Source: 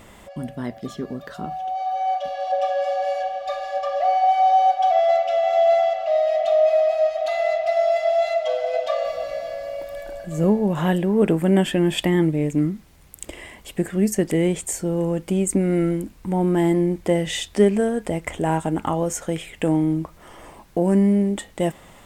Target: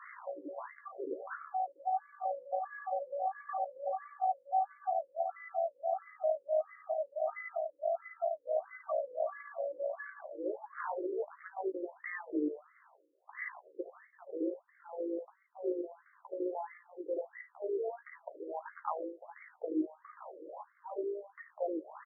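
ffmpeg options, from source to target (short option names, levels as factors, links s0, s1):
-filter_complex "[0:a]aemphasis=mode=reproduction:type=50fm,acrossover=split=420|2800[s0][s1][s2];[s2]adelay=50[s3];[s0]adelay=80[s4];[s4][s1][s3]amix=inputs=3:normalize=0,afftfilt=real='re*between(b*sr/4096,200,11000)':imag='im*between(b*sr/4096,200,11000)':win_size=4096:overlap=0.75,acrossover=split=560[s5][s6];[s6]aexciter=amount=12.3:drive=4.4:freq=8200[s7];[s5][s7]amix=inputs=2:normalize=0,highshelf=f=3400:g=12,areverse,acompressor=threshold=0.02:ratio=6,areverse,asplit=2[s8][s9];[s9]adelay=13,volume=0.473[s10];[s8][s10]amix=inputs=2:normalize=0,tremolo=f=55:d=0.462,afftfilt=real='re*between(b*sr/1024,380*pow(1600/380,0.5+0.5*sin(2*PI*1.5*pts/sr))/1.41,380*pow(1600/380,0.5+0.5*sin(2*PI*1.5*pts/sr))*1.41)':imag='im*between(b*sr/1024,380*pow(1600/380,0.5+0.5*sin(2*PI*1.5*pts/sr))/1.41,380*pow(1600/380,0.5+0.5*sin(2*PI*1.5*pts/sr))*1.41)':win_size=1024:overlap=0.75,volume=1.78"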